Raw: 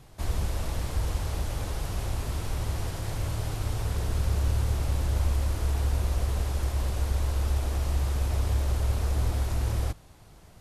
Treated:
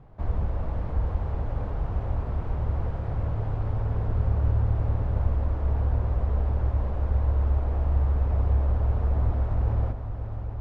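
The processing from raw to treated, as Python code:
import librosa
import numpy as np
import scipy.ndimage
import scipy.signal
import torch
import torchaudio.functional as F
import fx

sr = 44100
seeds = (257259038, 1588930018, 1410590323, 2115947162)

p1 = scipy.signal.sosfilt(scipy.signal.butter(2, 1100.0, 'lowpass', fs=sr, output='sos'), x)
p2 = fx.peak_eq(p1, sr, hz=340.0, db=-5.0, octaves=0.29)
p3 = p2 + fx.echo_heads(p2, sr, ms=271, heads='second and third', feedback_pct=67, wet_db=-12.0, dry=0)
y = p3 * librosa.db_to_amplitude(2.0)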